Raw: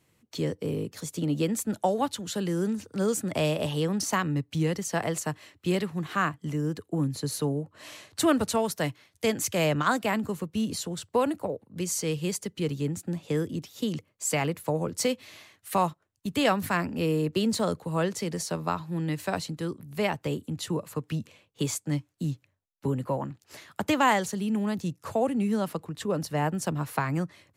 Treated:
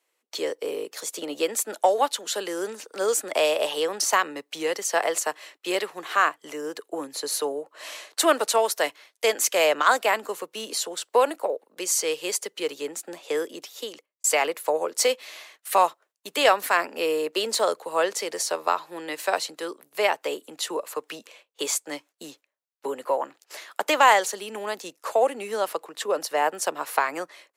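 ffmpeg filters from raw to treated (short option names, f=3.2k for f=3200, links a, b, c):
-filter_complex "[0:a]asplit=2[a][b];[a]atrim=end=14.24,asetpts=PTS-STARTPTS,afade=t=out:st=13.63:d=0.61[c];[b]atrim=start=14.24,asetpts=PTS-STARTPTS,afade=t=in:d=0.004:c=hsin[d];[c][d]concat=n=2:v=0:a=1,highpass=f=440:w=0.5412,highpass=f=440:w=1.3066,agate=range=-11dB:threshold=-58dB:ratio=16:detection=peak,acontrast=77"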